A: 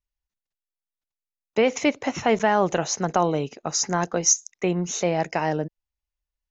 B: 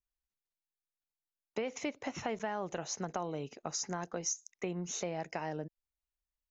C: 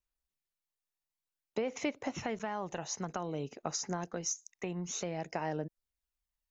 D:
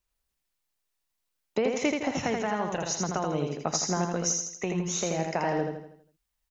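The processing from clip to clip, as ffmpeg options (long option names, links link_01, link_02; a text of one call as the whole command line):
ffmpeg -i in.wav -af "acompressor=threshold=-28dB:ratio=3,volume=-7.5dB" out.wav
ffmpeg -i in.wav -af "aphaser=in_gain=1:out_gain=1:delay=1.1:decay=0.29:speed=0.54:type=sinusoidal" out.wav
ffmpeg -i in.wav -af "aecho=1:1:81|162|243|324|405|486:0.631|0.284|0.128|0.0575|0.0259|0.0116,volume=7dB" out.wav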